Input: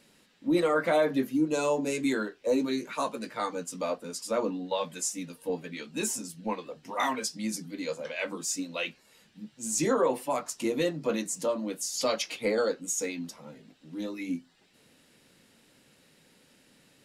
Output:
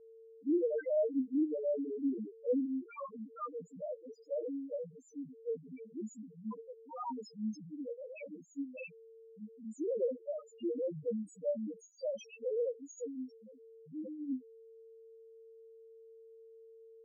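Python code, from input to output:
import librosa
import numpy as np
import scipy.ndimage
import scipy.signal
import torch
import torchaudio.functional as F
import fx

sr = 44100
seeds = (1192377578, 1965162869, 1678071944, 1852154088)

y = x + 10.0 ** (-50.0 / 20.0) * np.sin(2.0 * np.pi * 450.0 * np.arange(len(x)) / sr)
y = fx.spec_topn(y, sr, count=1)
y = fx.env_lowpass(y, sr, base_hz=1600.0, full_db=-32.5)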